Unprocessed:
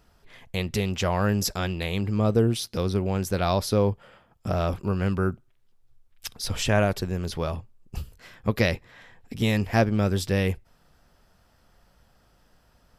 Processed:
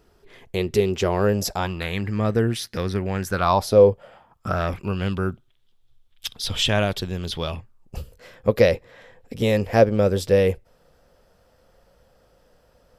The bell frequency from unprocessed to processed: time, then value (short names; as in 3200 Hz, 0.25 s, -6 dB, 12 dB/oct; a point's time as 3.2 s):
bell +13.5 dB 0.55 oct
1.2 s 390 Hz
1.96 s 1800 Hz
3.22 s 1800 Hz
3.87 s 460 Hz
5.03 s 3400 Hz
7.46 s 3400 Hz
7.98 s 510 Hz